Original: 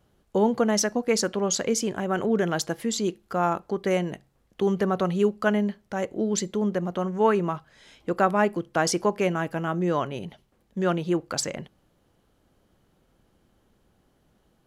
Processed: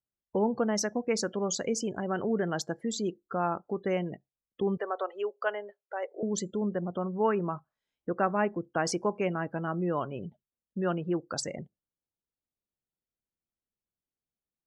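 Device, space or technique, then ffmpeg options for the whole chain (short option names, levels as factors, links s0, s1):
parallel compression: -filter_complex "[0:a]asettb=1/sr,asplit=3[s0][s1][s2];[s0]atrim=end=4.774[s3];[s1]atrim=start=4.77:end=6.23,asetpts=PTS-STARTPTS,afade=t=in:d=0.004:c=qsin,afade=t=out:st=1.456:d=0.004:c=qsin,highpass=f=450:w=0.5412,highpass=f=450:w=1.3066[s4];[s2]atrim=start=6.226[s5];[s3][s4]acrossfade=d=0.004:c1=hsin:c2=qsin[s6];[s6][s5]acrossfade=d=0.004:c1=qsin:c2=hsin,afftdn=nr=34:nf=-36,asplit=2[s7][s8];[s8]acompressor=threshold=0.0178:ratio=6,volume=0.944[s9];[s7][s9]amix=inputs=2:normalize=0,highshelf=f=9000:g=-4.5,volume=0.447"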